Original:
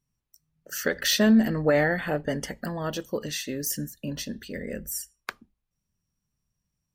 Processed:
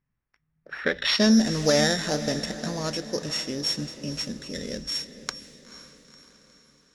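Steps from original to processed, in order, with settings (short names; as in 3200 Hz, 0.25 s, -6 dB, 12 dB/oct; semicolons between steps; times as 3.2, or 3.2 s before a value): sample sorter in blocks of 8 samples; diffused feedback echo 0.489 s, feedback 53%, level -13 dB; low-pass sweep 1900 Hz -> 6900 Hz, 0.8–1.34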